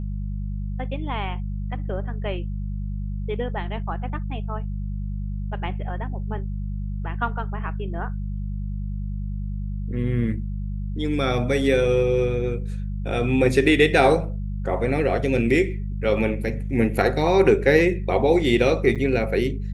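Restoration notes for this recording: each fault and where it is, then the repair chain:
hum 50 Hz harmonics 4 -28 dBFS
18.95–18.96 s: dropout 7.3 ms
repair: de-hum 50 Hz, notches 4; interpolate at 18.95 s, 7.3 ms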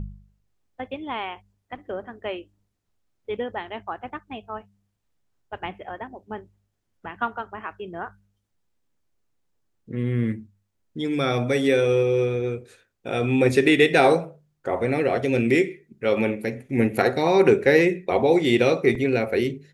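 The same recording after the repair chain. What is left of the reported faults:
nothing left

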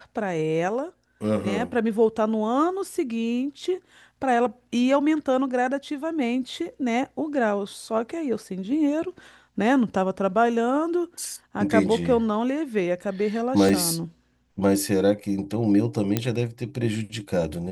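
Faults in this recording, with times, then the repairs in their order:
13.69 s: dropout 4 ms
16.17 s: pop -8 dBFS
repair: de-click; interpolate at 13.69 s, 4 ms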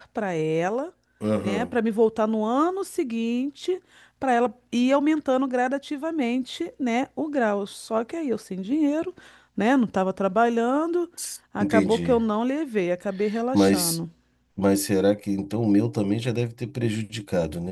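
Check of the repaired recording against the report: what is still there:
nothing left

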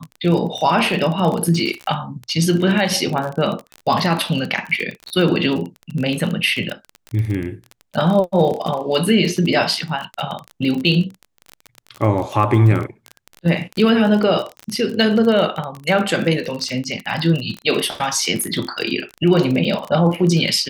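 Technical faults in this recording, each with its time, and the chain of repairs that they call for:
crackle 31 per s -22 dBFS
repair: de-click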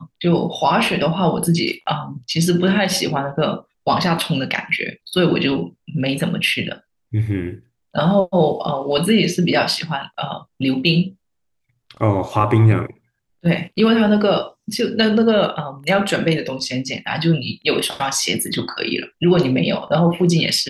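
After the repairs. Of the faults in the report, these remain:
nothing left

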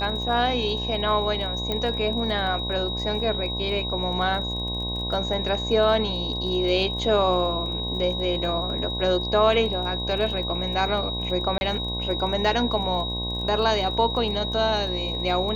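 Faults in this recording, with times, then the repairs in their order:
buzz 60 Hz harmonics 18 -31 dBFS
crackle 26 per s -34 dBFS
whine 3.8 kHz -29 dBFS
1.72 s: pop -13 dBFS
11.58–11.61 s: dropout 31 ms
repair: de-click; de-hum 60 Hz, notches 18; band-stop 3.8 kHz, Q 30; interpolate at 11.58 s, 31 ms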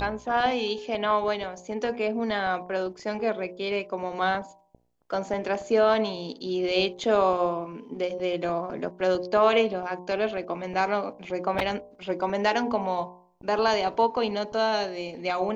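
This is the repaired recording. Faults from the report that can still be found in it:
nothing left

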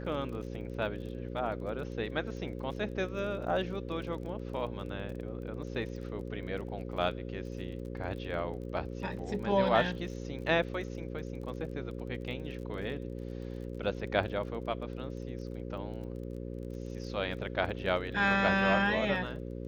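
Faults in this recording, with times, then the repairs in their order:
buzz 60 Hz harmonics 9 -40 dBFS
crackle 30 per s -43 dBFS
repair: de-click; de-hum 60 Hz, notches 9

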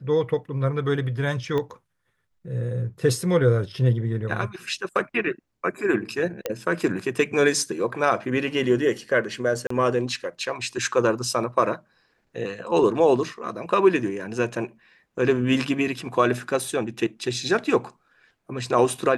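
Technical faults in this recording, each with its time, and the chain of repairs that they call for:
1.58 s: pop -16 dBFS
6.46 s: pop -11 dBFS
9.67–9.70 s: dropout 34 ms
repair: de-click; interpolate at 9.67 s, 34 ms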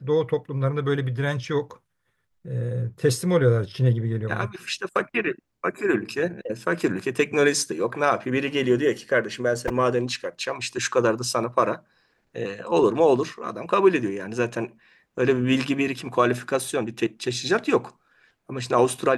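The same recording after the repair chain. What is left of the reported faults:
1.58 s: pop

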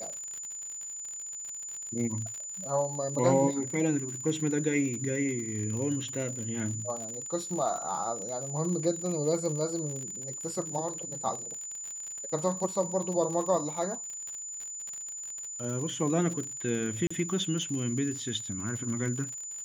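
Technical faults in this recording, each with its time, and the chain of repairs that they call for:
crackle 59 per s -35 dBFS
whine 7 kHz -37 dBFS
17.07–17.11 s: dropout 35 ms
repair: de-click; band-stop 7 kHz, Q 30; interpolate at 17.07 s, 35 ms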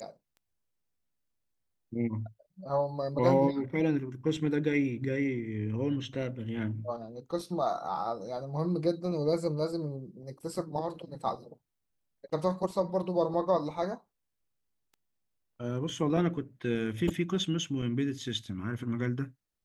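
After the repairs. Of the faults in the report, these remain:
nothing left

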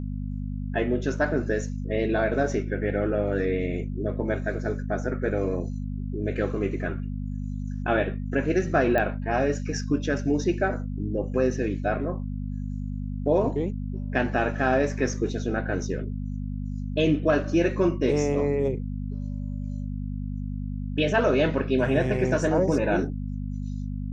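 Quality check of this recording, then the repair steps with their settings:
hum 50 Hz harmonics 5 -31 dBFS
8.98 s: pop -14 dBFS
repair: de-click; de-hum 50 Hz, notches 5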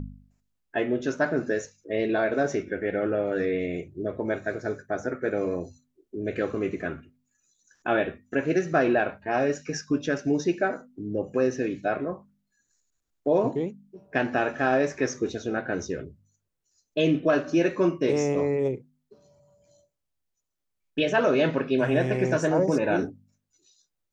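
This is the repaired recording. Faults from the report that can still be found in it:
nothing left

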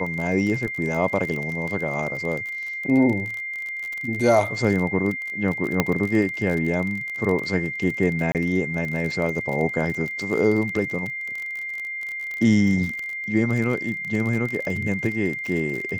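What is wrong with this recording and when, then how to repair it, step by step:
crackle 38 per s -27 dBFS
whine 2.1 kHz -28 dBFS
5.80 s: pop -4 dBFS
8.32–8.35 s: dropout 28 ms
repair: de-click; band-stop 2.1 kHz, Q 30; interpolate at 8.32 s, 28 ms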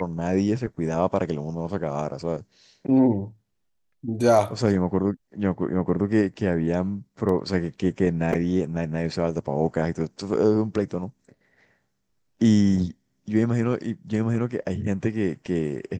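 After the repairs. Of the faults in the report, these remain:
nothing left

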